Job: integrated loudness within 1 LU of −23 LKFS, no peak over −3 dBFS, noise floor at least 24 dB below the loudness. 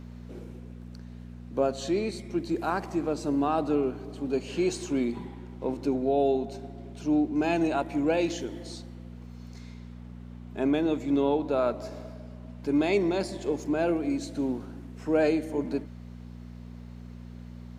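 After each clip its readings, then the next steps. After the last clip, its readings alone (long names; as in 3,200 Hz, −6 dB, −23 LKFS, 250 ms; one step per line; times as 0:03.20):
mains hum 60 Hz; hum harmonics up to 240 Hz; level of the hum −40 dBFS; integrated loudness −28.5 LKFS; sample peak −13.0 dBFS; target loudness −23.0 LKFS
→ hum removal 60 Hz, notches 4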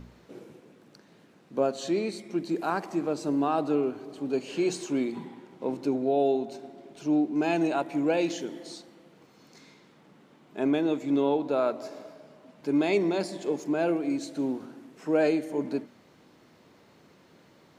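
mains hum none found; integrated loudness −28.5 LKFS; sample peak −13.0 dBFS; target loudness −23.0 LKFS
→ level +5.5 dB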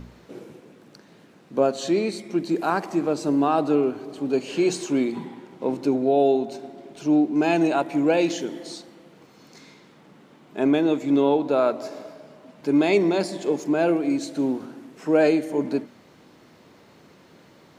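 integrated loudness −23.0 LKFS; sample peak −7.5 dBFS; background noise floor −53 dBFS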